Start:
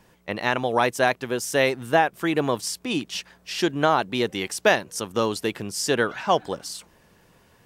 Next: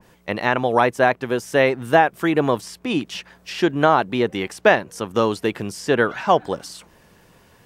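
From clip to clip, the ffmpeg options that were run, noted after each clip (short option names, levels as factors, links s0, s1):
-filter_complex "[0:a]acrossover=split=2800[s0][s1];[s1]acompressor=threshold=0.00891:ratio=6[s2];[s0][s2]amix=inputs=2:normalize=0,adynamicequalizer=threshold=0.0178:dfrequency=2100:dqfactor=0.7:tfrequency=2100:tqfactor=0.7:attack=5:release=100:ratio=0.375:range=2:mode=cutabove:tftype=highshelf,volume=1.68"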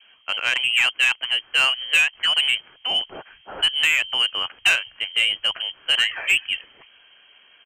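-filter_complex "[0:a]lowpass=f=2800:t=q:w=0.5098,lowpass=f=2800:t=q:w=0.6013,lowpass=f=2800:t=q:w=0.9,lowpass=f=2800:t=q:w=2.563,afreqshift=-3300,acrossover=split=120[s0][s1];[s0]aecho=1:1:203:0.299[s2];[s1]asoftclip=type=tanh:threshold=0.282[s3];[s2][s3]amix=inputs=2:normalize=0"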